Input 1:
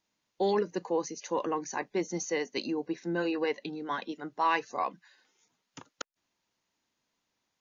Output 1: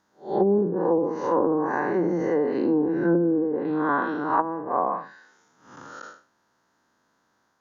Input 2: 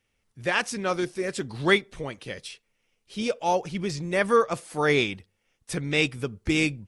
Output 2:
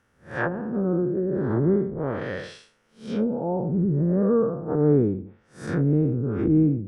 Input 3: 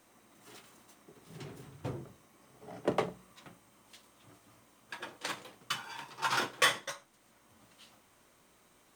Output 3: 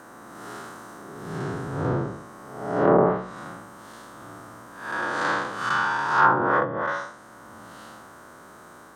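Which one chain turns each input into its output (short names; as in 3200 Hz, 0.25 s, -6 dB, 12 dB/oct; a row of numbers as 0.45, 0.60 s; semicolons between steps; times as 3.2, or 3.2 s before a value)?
time blur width 0.204 s; HPF 92 Hz 6 dB/oct; treble ducked by the level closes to 300 Hz, closed at -30 dBFS; resonant high shelf 1900 Hz -7 dB, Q 3; match loudness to -24 LUFS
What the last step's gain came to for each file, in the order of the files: +15.0, +13.0, +20.5 dB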